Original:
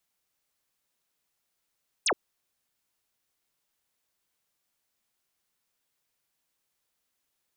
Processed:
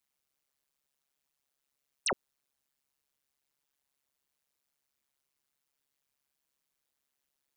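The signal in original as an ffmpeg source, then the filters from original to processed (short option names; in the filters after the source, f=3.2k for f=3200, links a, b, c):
-f lavfi -i "aevalsrc='0.0794*clip(t/0.002,0,1)*clip((0.07-t)/0.002,0,1)*sin(2*PI*10000*0.07/log(290/10000)*(exp(log(290/10000)*t/0.07)-1))':d=0.07:s=44100"
-af "tremolo=f=140:d=0.974"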